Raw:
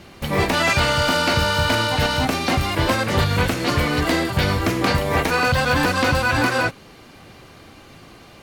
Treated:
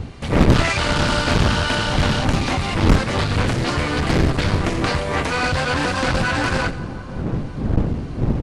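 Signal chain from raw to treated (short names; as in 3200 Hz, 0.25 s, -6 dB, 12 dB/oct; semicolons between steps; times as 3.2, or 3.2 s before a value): wind noise 170 Hz -18 dBFS; one-sided clip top -21 dBFS, bottom -1 dBFS; downsampling 22050 Hz; split-band echo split 1400 Hz, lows 0.53 s, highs 87 ms, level -15.5 dB; Doppler distortion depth 0.79 ms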